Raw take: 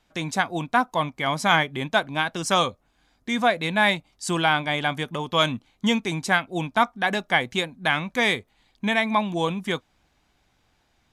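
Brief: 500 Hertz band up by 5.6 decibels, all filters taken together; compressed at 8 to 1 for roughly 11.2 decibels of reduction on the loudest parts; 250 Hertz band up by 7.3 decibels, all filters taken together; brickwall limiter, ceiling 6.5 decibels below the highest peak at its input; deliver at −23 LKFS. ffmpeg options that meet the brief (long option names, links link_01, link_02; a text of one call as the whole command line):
ffmpeg -i in.wav -af "equalizer=frequency=250:width_type=o:gain=8,equalizer=frequency=500:width_type=o:gain=5.5,acompressor=threshold=-23dB:ratio=8,volume=7dB,alimiter=limit=-12dB:level=0:latency=1" out.wav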